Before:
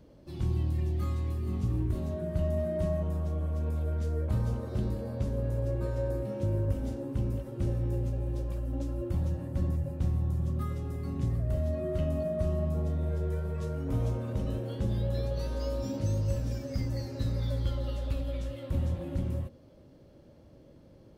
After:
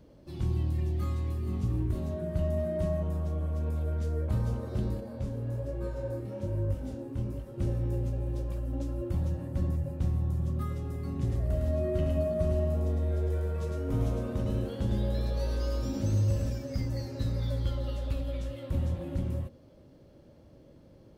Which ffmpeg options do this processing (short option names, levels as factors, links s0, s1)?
-filter_complex "[0:a]asettb=1/sr,asplit=3[s0][s1][s2];[s0]atrim=end=5.004[s3];[s1]atrim=start=5:end=7.58,asetpts=PTS-STARTPTS,afade=t=in:d=0.004:c=qsin,afade=t=out:st=2.576:d=0.004:c=qsin,flanger=delay=20:depth=6.4:speed=1.2[s4];[s2]atrim=start=7.576[s5];[s3][s4]acrossfade=d=0.004:c1=hsin:c2=qsin[s6];[s6][s5]acrossfade=d=0.004:c1=qsin:c2=hsin,asettb=1/sr,asplit=3[s7][s8][s9];[s7]atrim=end=11.144[s10];[s8]atrim=start=11.14:end=16.5,asetpts=PTS-STARTPTS,afade=t=in:d=0.004:c=qsin,afade=t=out:st=5.356:d=0.004:c=qsin,aecho=1:1:106:0.708,atrim=end_sample=236376[s11];[s9]atrim=start=16.496[s12];[s10][s11]acrossfade=d=0.004:c1=hsin:c2=qsin[s13];[s13][s12]acrossfade=d=0.004:c1=qsin:c2=hsin"